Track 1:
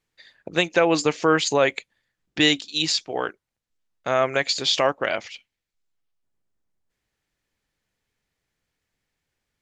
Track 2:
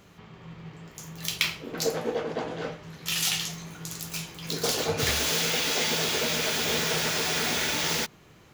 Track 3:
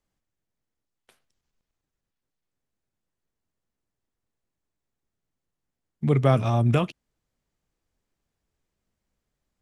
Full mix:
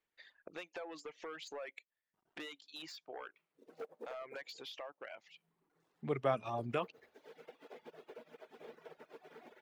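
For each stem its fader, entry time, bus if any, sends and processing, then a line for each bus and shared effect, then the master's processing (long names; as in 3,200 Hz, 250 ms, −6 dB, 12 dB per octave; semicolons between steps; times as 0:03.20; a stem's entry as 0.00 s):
−6.0 dB, 0.00 s, bus A, no send, high-pass filter 66 Hz 24 dB per octave; downward compressor 6 to 1, threshold −20 dBFS, peak gain reduction 7.5 dB; automatic ducking −13 dB, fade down 1.50 s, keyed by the third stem
+1.5 dB, 1.95 s, bus A, no send, resonant band-pass 340 Hz, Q 0.75; bit reduction 8 bits; expander for the loud parts 2.5 to 1, over −41 dBFS
−8.5 dB, 0.00 s, no bus, no send, low-pass that shuts in the quiet parts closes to 460 Hz, open at −18 dBFS
bus A: 0.0 dB, hard clipping −27.5 dBFS, distortion −9 dB; downward compressor 2 to 1, threshold −50 dBFS, peak gain reduction 11 dB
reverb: not used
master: reverb reduction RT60 1 s; bass and treble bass −15 dB, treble −11 dB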